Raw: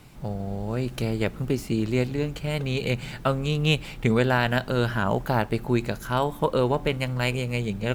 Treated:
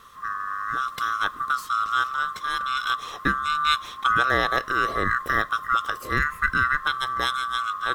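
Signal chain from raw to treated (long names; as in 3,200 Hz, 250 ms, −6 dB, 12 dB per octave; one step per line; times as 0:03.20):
neighbouring bands swapped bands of 1,000 Hz
low-shelf EQ 170 Hz +6.5 dB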